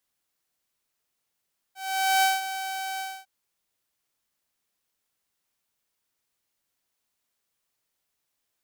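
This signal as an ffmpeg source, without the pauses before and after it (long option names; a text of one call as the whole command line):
ffmpeg -f lavfi -i "aevalsrc='0.168*(2*mod(767*t,1)-1)':duration=1.504:sample_rate=44100,afade=type=in:duration=0.476,afade=type=out:start_time=0.476:duration=0.18:silence=0.251,afade=type=out:start_time=1.25:duration=0.254" out.wav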